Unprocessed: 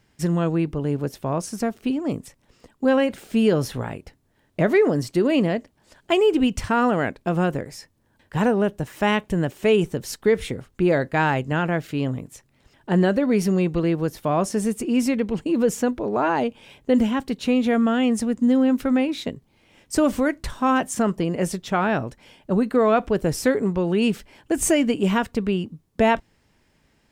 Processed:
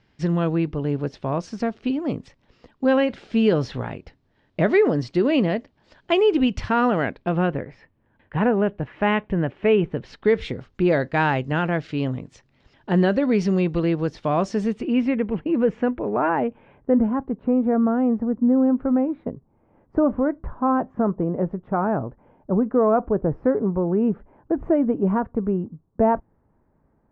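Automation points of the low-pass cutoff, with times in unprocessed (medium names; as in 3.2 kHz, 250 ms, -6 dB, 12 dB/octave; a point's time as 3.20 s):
low-pass 24 dB/octave
7.06 s 4.8 kHz
7.69 s 2.7 kHz
9.90 s 2.7 kHz
10.50 s 5.2 kHz
14.54 s 5.2 kHz
15.18 s 2.5 kHz
16.08 s 2.5 kHz
17.24 s 1.2 kHz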